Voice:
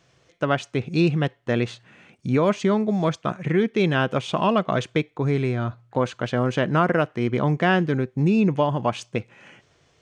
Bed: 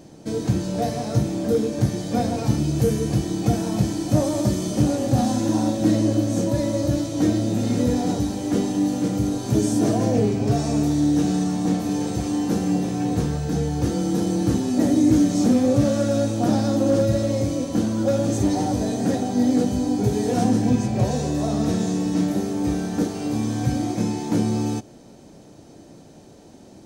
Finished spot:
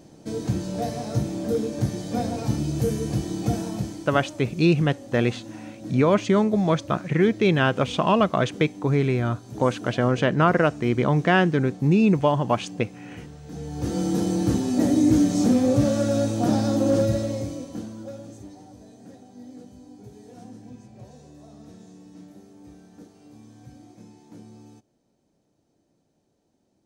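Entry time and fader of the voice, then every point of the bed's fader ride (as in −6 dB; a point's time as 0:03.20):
3.65 s, +1.0 dB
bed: 0:03.59 −4 dB
0:04.39 −18 dB
0:13.38 −18 dB
0:13.99 −1.5 dB
0:17.04 −1.5 dB
0:18.59 −24 dB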